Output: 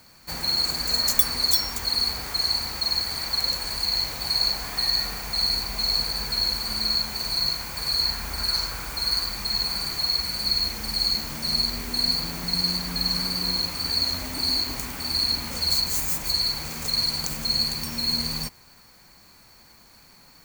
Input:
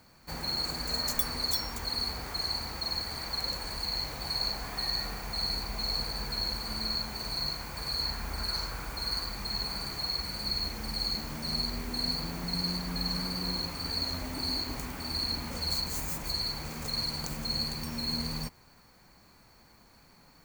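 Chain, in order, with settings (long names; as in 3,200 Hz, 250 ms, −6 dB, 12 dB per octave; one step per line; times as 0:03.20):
high-shelf EQ 2,000 Hz +8.5 dB
level +2 dB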